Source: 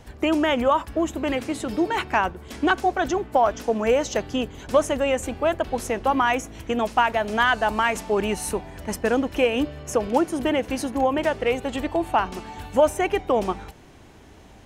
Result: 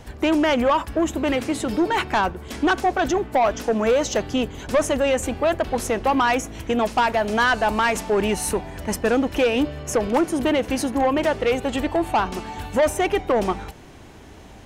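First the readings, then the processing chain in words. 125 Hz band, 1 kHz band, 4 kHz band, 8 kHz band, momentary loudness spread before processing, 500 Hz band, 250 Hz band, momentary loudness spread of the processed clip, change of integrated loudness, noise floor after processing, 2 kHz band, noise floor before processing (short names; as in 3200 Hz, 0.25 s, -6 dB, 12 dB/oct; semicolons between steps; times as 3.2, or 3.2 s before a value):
+3.5 dB, +1.0 dB, +2.0 dB, +4.0 dB, 7 LU, +1.5 dB, +2.5 dB, 5 LU, +1.5 dB, -43 dBFS, +1.5 dB, -48 dBFS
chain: soft clip -17.5 dBFS, distortion -12 dB; gain +4.5 dB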